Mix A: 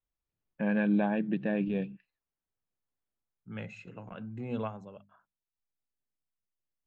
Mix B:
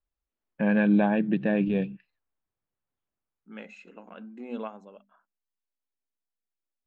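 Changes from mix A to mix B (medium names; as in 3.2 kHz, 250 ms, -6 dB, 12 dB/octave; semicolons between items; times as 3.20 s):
first voice +5.5 dB; second voice: add brick-wall FIR high-pass 190 Hz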